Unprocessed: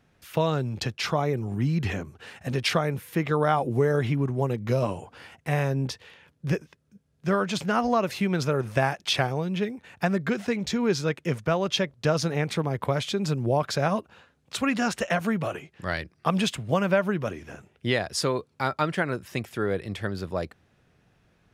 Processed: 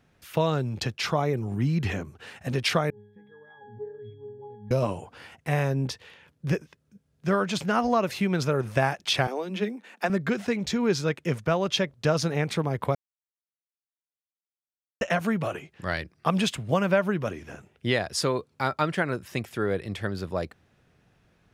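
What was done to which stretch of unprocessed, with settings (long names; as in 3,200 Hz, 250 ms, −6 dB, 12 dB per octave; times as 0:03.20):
0:02.90–0:04.71: resonances in every octave G#, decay 0.76 s
0:09.27–0:10.10: Butterworth high-pass 190 Hz 96 dB per octave
0:12.95–0:15.01: silence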